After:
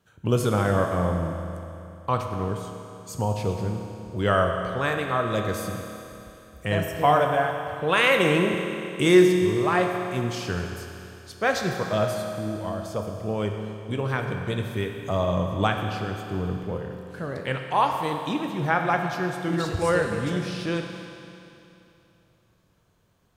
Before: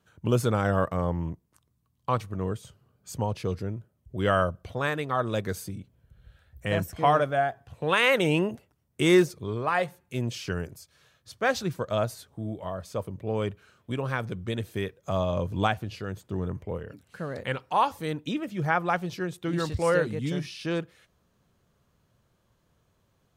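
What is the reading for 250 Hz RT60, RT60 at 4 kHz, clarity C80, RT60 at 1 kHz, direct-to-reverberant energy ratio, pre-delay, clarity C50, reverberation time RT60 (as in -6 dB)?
2.9 s, 2.9 s, 5.0 dB, 2.9 s, 3.0 dB, 11 ms, 4.0 dB, 2.9 s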